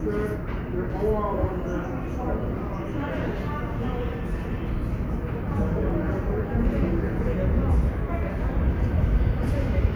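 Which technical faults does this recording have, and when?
5.9 gap 2.8 ms

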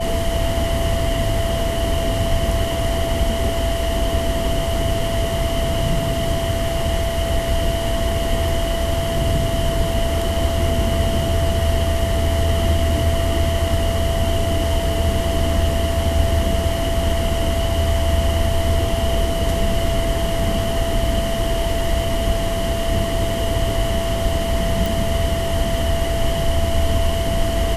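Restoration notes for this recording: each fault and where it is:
tone 670 Hz -23 dBFS
24.86 pop

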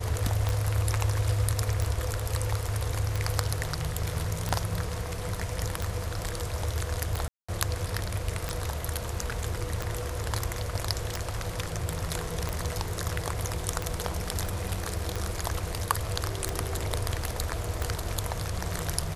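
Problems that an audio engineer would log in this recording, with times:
tick 45 rpm -15 dBFS
7.28–7.49 gap 0.205 s
14.46 gap 2.5 ms

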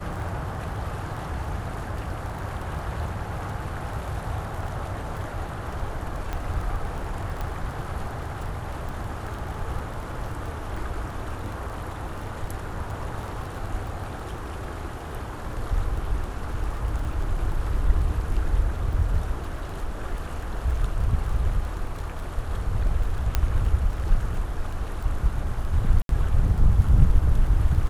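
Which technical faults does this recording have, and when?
crackle 11/s -31 dBFS
6.33 pop -16 dBFS
7.41 pop -18 dBFS
23.35 pop -8 dBFS
26.02–26.09 gap 72 ms

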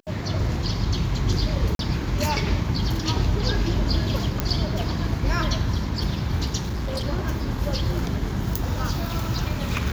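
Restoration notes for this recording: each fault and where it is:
1.75–1.79 gap 42 ms
4.4 pop -7 dBFS
6.57–7.05 clipped -23.5 dBFS

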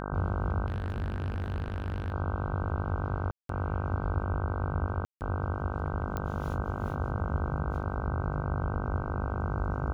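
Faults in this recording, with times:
buzz 50 Hz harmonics 31 -36 dBFS
0.66–2.12 clipped -29 dBFS
3.31–3.49 gap 0.183 s
5.05–5.21 gap 0.159 s
6.17 pop -20 dBFS

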